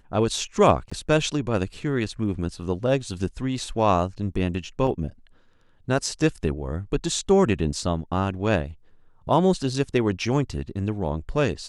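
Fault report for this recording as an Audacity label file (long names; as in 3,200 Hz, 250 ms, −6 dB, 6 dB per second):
0.900000	0.920000	drop-out 15 ms
4.870000	4.870000	drop-out 3.9 ms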